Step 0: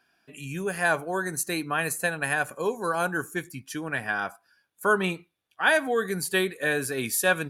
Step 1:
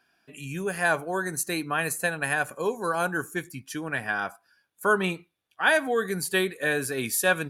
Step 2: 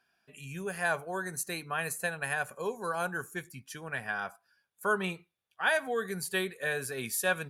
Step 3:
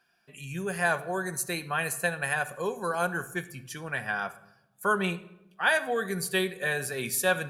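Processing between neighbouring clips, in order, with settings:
no audible change
peaking EQ 300 Hz -15 dB 0.21 oct; trim -6 dB
reverberation RT60 0.90 s, pre-delay 6 ms, DRR 10 dB; trim +3.5 dB

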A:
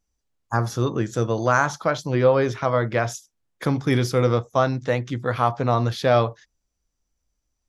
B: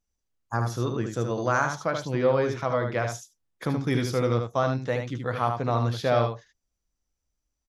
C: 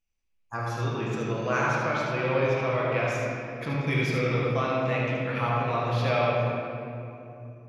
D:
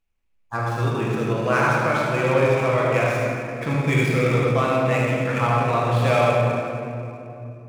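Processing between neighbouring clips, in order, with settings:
delay 76 ms -6 dB; trim -5.5 dB
peaking EQ 2.5 kHz +14.5 dB 0.59 oct; reverberation RT60 3.0 s, pre-delay 6 ms, DRR -5 dB; trim -7.5 dB
median filter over 9 samples; trim +6.5 dB

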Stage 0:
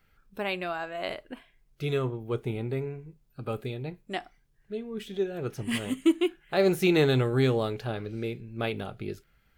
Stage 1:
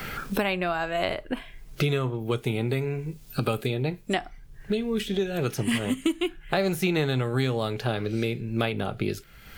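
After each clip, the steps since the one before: dynamic bell 380 Hz, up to -5 dB, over -35 dBFS, Q 1.7; three bands compressed up and down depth 100%; trim +4.5 dB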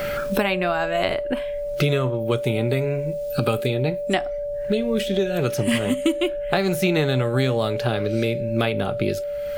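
whistle 580 Hz -29 dBFS; trim +4 dB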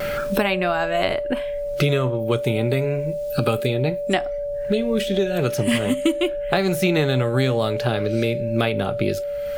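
vibrato 0.4 Hz 11 cents; trim +1 dB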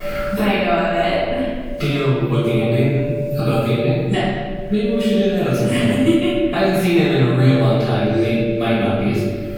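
reverberation RT60 1.5 s, pre-delay 3 ms, DRR -17 dB; trim -17.5 dB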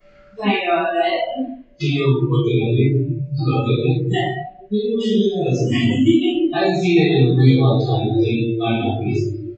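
resampled via 16 kHz; spectral noise reduction 27 dB; trim +1.5 dB

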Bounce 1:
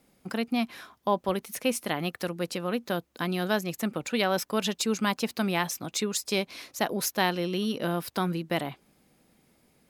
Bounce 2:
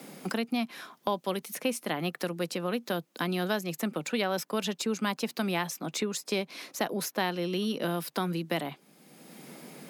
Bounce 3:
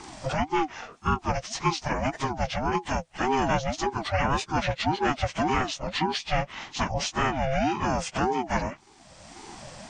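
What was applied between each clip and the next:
elliptic high-pass 150 Hz; three bands compressed up and down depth 70%; trim -2 dB
frequency axis rescaled in octaves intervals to 82%; pre-echo 32 ms -20.5 dB; ring modulator with a swept carrier 470 Hz, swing 30%, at 1.8 Hz; trim +9 dB

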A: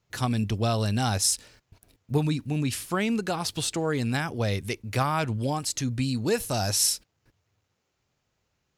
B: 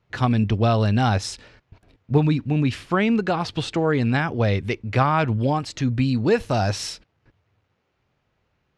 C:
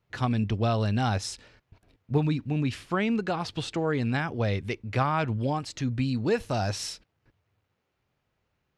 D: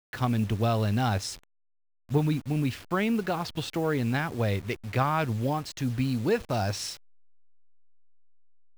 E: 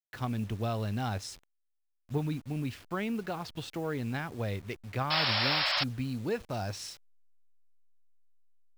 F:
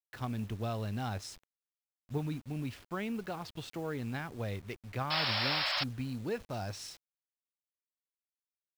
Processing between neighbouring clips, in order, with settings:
low-pass 2.9 kHz 12 dB/octave; trim +6.5 dB
treble shelf 7.2 kHz +6.5 dB; trim -6.5 dB
send-on-delta sampling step -41.5 dBFS
painted sound noise, 5.10–5.84 s, 530–5500 Hz -22 dBFS; trim -7 dB
bit crusher 9-bit; trim -3.5 dB

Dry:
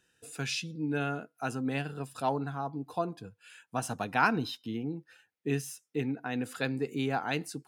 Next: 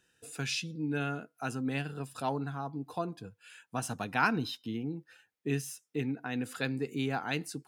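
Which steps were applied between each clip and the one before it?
dynamic bell 670 Hz, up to -4 dB, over -41 dBFS, Q 0.79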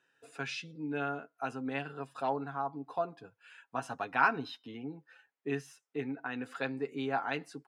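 band-pass filter 970 Hz, Q 0.75; comb 7.3 ms, depth 49%; trim +2 dB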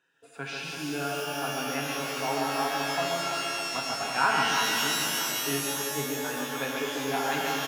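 reverse bouncing-ball echo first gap 140 ms, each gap 1.4×, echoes 5; pitch-shifted reverb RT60 3 s, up +12 st, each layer -2 dB, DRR 0.5 dB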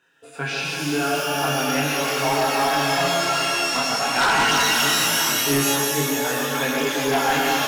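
chorus voices 2, 0.44 Hz, delay 24 ms, depth 4.5 ms; sine folder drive 9 dB, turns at -14 dBFS

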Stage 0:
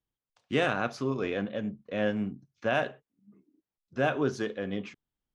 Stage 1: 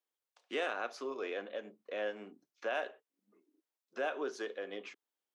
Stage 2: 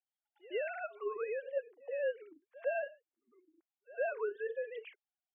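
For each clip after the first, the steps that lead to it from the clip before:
high-pass 360 Hz 24 dB/octave; compression 1.5:1, threshold -46 dBFS, peak gain reduction 8.5 dB
formants replaced by sine waves; pre-echo 107 ms -20.5 dB; trim +1 dB

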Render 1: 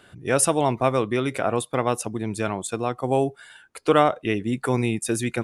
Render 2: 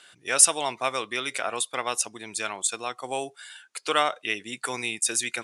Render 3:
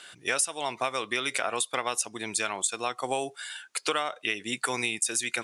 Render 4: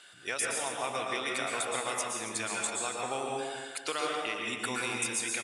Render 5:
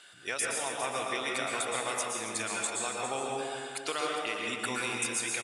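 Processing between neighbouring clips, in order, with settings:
frequency weighting ITU-R 468; trim -4 dB
compression 10:1, threshold -29 dBFS, peak gain reduction 18.5 dB; trim +5 dB
delay 276 ms -13 dB; plate-style reverb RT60 1.4 s, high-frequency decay 0.6×, pre-delay 105 ms, DRR -1.5 dB; trim -7 dB
delay 406 ms -11 dB

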